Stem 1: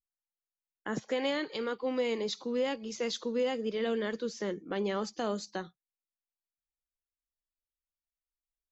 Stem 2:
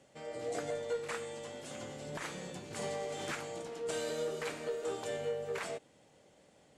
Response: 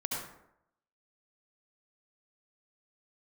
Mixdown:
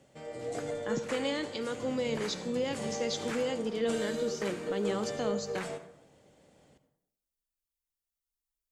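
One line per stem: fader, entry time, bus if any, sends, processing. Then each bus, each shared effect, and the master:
−5.0 dB, 0.00 s, send −16 dB, high-shelf EQ 4,800 Hz +10 dB
−2.5 dB, 0.00 s, send −11.5 dB, no processing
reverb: on, RT60 0.80 s, pre-delay 63 ms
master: low-shelf EQ 300 Hz +6.5 dB

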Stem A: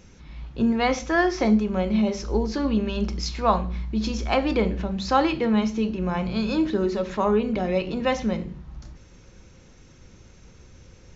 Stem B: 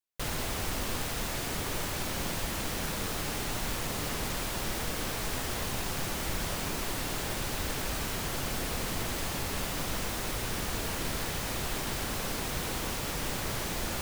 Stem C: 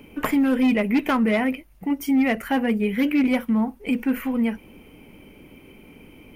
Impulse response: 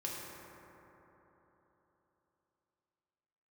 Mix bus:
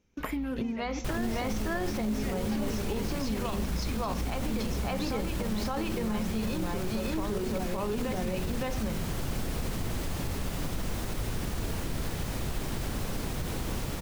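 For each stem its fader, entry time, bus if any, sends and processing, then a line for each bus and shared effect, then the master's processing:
+1.5 dB, 0.00 s, bus A, no send, echo send −7.5 dB, no processing
−5.0 dB, 0.85 s, no bus, no send, no echo send, low-shelf EQ 410 Hz +11 dB
−8.0 dB, 0.00 s, bus A, no send, no echo send, no processing
bus A: 0.0 dB, noise gate −41 dBFS, range −24 dB; downward compressor 16 to 1, threshold −29 dBFS, peak gain reduction 17.5 dB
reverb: not used
echo: single-tap delay 564 ms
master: brickwall limiter −22.5 dBFS, peak gain reduction 11.5 dB

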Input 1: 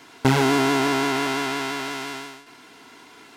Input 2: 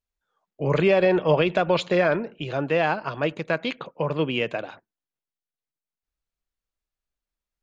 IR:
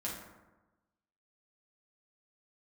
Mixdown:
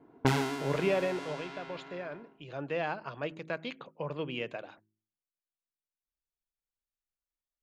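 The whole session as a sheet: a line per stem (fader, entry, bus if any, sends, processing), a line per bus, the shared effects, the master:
−3.5 dB, 0.00 s, no send, low-pass that shuts in the quiet parts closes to 440 Hz, open at −16.5 dBFS; automatic ducking −15 dB, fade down 0.40 s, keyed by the second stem
0:00.96 −9.5 dB → 0:01.36 −20 dB → 0:02.27 −20 dB → 0:02.64 −11 dB, 0.00 s, no send, no processing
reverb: not used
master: hum removal 53.28 Hz, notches 7

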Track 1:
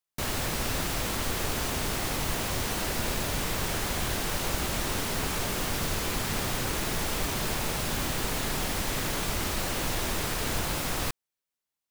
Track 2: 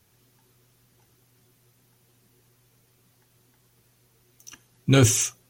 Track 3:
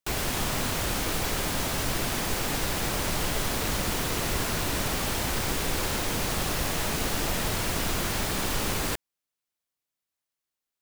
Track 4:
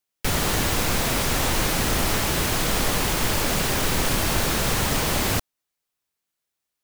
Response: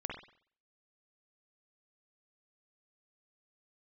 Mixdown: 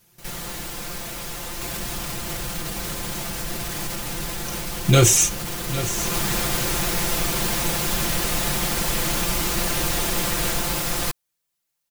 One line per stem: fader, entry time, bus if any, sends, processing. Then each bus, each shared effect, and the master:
+1.5 dB, 0.00 s, no bus, no send, no echo send, automatic ducking −20 dB, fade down 0.20 s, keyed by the second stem
+1.0 dB, 0.00 s, no bus, no send, echo send −13 dB, no processing
−0.5 dB, 1.55 s, bus A, no send, no echo send, sub-octave generator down 1 octave, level +3 dB
−14.0 dB, 0.00 s, bus A, no send, no echo send, no processing
bus A: 0.0 dB, brickwall limiter −24 dBFS, peak gain reduction 10 dB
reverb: not used
echo: single-tap delay 807 ms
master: high-shelf EQ 5,200 Hz +5 dB; comb filter 5.8 ms, depth 87%

